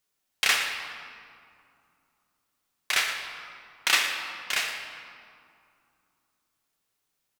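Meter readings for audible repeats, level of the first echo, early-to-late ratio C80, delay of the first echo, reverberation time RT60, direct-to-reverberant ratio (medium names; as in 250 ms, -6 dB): 1, -12.0 dB, 5.0 dB, 116 ms, 2.4 s, 2.5 dB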